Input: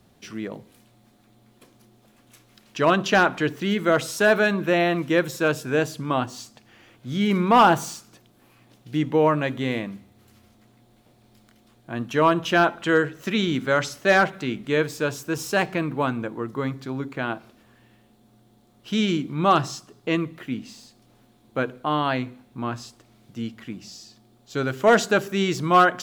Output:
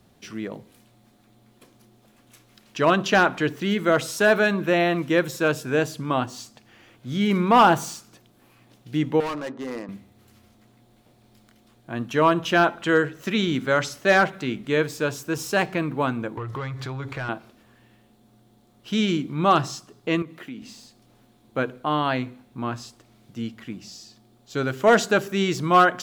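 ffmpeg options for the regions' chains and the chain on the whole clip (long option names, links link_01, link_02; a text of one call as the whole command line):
ffmpeg -i in.wav -filter_complex "[0:a]asettb=1/sr,asplit=3[link_01][link_02][link_03];[link_01]atrim=end=9.204[link_04];[link_02]atrim=start=9.2:end=9.89,asetpts=PTS-STARTPTS,afade=type=in:duration=0.004:curve=qsin,afade=type=out:start_time=0.686:duration=0.004:curve=qsin,adynamicsmooth=sensitivity=5:basefreq=1000,highpass=310,equalizer=frequency=640:width_type=q:width=4:gain=-4,equalizer=frequency=1500:width_type=q:width=4:gain=-4,equalizer=frequency=2300:width_type=q:width=4:gain=-10,equalizer=frequency=3300:width_type=q:width=4:gain=-9,lowpass=frequency=7600:width=0.5412,lowpass=frequency=7600:width=1.3066,asoftclip=type=hard:threshold=-26.5dB[link_05];[link_03]atrim=start=9.886[link_06];[link_04][link_05]acrossfade=duration=0.004:curve1=hsin:curve2=qsin[link_07];[link_07][link_06]acrossfade=duration=0.004:curve1=qsin:curve2=hsin,asettb=1/sr,asplit=3[link_08][link_09][link_10];[link_08]atrim=end=16.374[link_11];[link_09]atrim=start=16.37:end=17.29,asetpts=PTS-STARTPTS,afade=type=in:duration=0.004:curve=qsin,afade=type=out:start_time=0.916:duration=0.004:curve=qsin,lowshelf=frequency=150:width_type=q:width=3:gain=13,acompressor=threshold=-28dB:ratio=10:attack=3.2:release=140:knee=1:detection=peak,asplit=2[link_12][link_13];[link_13]highpass=frequency=720:poles=1,volume=18dB,asoftclip=type=tanh:threshold=-21.5dB[link_14];[link_12][link_14]amix=inputs=2:normalize=0,lowpass=frequency=3800:poles=1,volume=-6dB[link_15];[link_10]atrim=start=17.286[link_16];[link_11][link_15]acrossfade=duration=0.004:curve1=hsin:curve2=qsin[link_17];[link_17][link_16]acrossfade=duration=0.004:curve1=qsin:curve2=hsin,asettb=1/sr,asplit=3[link_18][link_19][link_20];[link_18]atrim=end=20.224[link_21];[link_19]atrim=start=20.22:end=20.62,asetpts=PTS-STARTPTS,afade=type=in:duration=0.004:curve=qsin,afade=type=out:start_time=0.396:duration=0.004:curve=qsin,highpass=170,acompressor=threshold=-34dB:ratio=3:attack=3.2:release=140:knee=1:detection=peak[link_22];[link_20]atrim=start=20.616[link_23];[link_21][link_22]acrossfade=duration=0.004:curve1=hsin:curve2=qsin[link_24];[link_24][link_23]acrossfade=duration=0.004:curve1=qsin:curve2=hsin" out.wav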